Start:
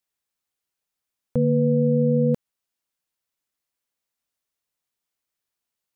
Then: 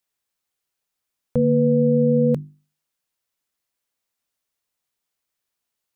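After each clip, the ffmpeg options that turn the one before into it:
-af "bandreject=f=50:t=h:w=6,bandreject=f=100:t=h:w=6,bandreject=f=150:t=h:w=6,bandreject=f=200:t=h:w=6,bandreject=f=250:t=h:w=6,bandreject=f=300:t=h:w=6,bandreject=f=350:t=h:w=6,volume=3dB"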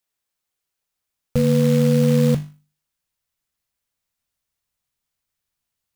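-af "asubboost=boost=3.5:cutoff=180,acrusher=bits=4:mode=log:mix=0:aa=0.000001"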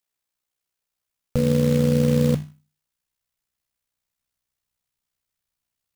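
-af "tremolo=f=62:d=0.571"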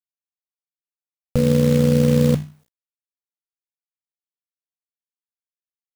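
-af "acrusher=bits=10:mix=0:aa=0.000001,volume=3dB"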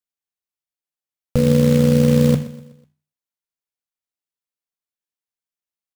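-af "aecho=1:1:124|248|372|496:0.141|0.0636|0.0286|0.0129,volume=1.5dB"

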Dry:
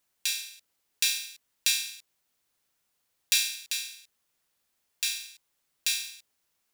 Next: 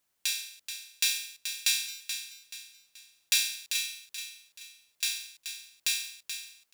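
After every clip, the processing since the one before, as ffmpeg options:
-af "volume=11dB,asoftclip=hard,volume=-11dB,aecho=1:1:430|860|1290|1720:0.355|0.131|0.0486|0.018,volume=-1dB"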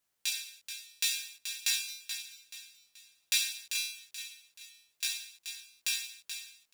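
-af "flanger=delay=17:depth=2.5:speed=0.52"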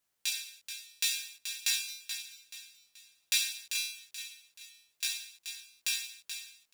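-af anull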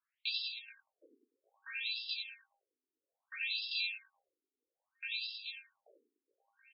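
-af "aecho=1:1:90|189|297.9|417.7|549.5:0.631|0.398|0.251|0.158|0.1,asoftclip=type=tanh:threshold=-23.5dB,afftfilt=real='re*between(b*sr/1024,310*pow(3800/310,0.5+0.5*sin(2*PI*0.61*pts/sr))/1.41,310*pow(3800/310,0.5+0.5*sin(2*PI*0.61*pts/sr))*1.41)':imag='im*between(b*sr/1024,310*pow(3800/310,0.5+0.5*sin(2*PI*0.61*pts/sr))/1.41,310*pow(3800/310,0.5+0.5*sin(2*PI*0.61*pts/sr))*1.41)':win_size=1024:overlap=0.75"

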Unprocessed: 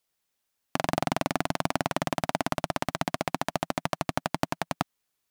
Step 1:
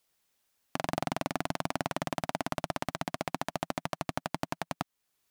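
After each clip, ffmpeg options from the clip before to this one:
-af "alimiter=limit=-17dB:level=0:latency=1:release=480,volume=4dB"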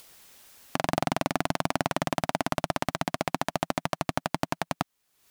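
-af "acompressor=mode=upward:threshold=-44dB:ratio=2.5,volume=5.5dB"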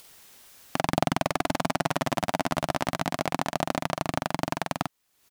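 -filter_complex "[0:a]asplit=2[a][b];[b]adelay=46,volume=-4.5dB[c];[a][c]amix=inputs=2:normalize=0"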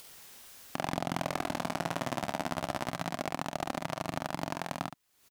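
-filter_complex "[0:a]asplit=2[a][b];[b]aecho=0:1:29|70:0.211|0.316[c];[a][c]amix=inputs=2:normalize=0,alimiter=limit=-15dB:level=0:latency=1:release=442"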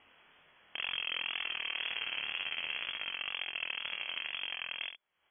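-af "lowpass=f=2.9k:t=q:w=0.5098,lowpass=f=2.9k:t=q:w=0.6013,lowpass=f=2.9k:t=q:w=0.9,lowpass=f=2.9k:t=q:w=2.563,afreqshift=-3400,flanger=delay=19.5:depth=7.6:speed=2"

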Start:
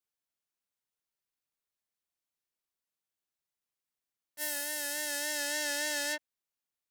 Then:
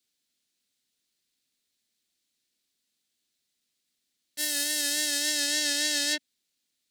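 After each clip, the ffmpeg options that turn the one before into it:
-af "alimiter=level_in=2dB:limit=-24dB:level=0:latency=1:release=161,volume=-2dB,equalizer=f=250:t=o:w=1:g=11,equalizer=f=1k:t=o:w=1:g=-8,equalizer=f=2k:t=o:w=1:g=3,equalizer=f=4k:t=o:w=1:g=11,equalizer=f=8k:t=o:w=1:g=6,volume=5.5dB"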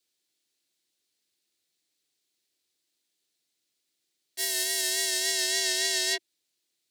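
-af "afreqshift=84"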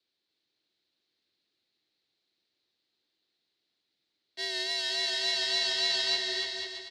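-filter_complex "[0:a]acrossover=split=2500[a][b];[a]aeval=exprs='0.0562*sin(PI/2*2*val(0)/0.0562)':c=same[c];[b]lowpass=f=4.1k:t=q:w=3.6[d];[c][d]amix=inputs=2:normalize=0,aecho=1:1:290|493|635.1|734.6|804.2:0.631|0.398|0.251|0.158|0.1,volume=-8.5dB"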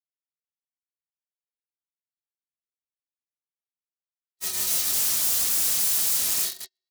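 -af "aeval=exprs='(mod(29.9*val(0)+1,2)-1)/29.9':c=same,bass=f=250:g=1,treble=f=4k:g=13,agate=range=-54dB:threshold=-24dB:ratio=16:detection=peak"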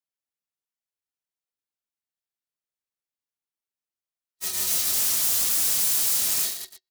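-af "aecho=1:1:118:0.335"

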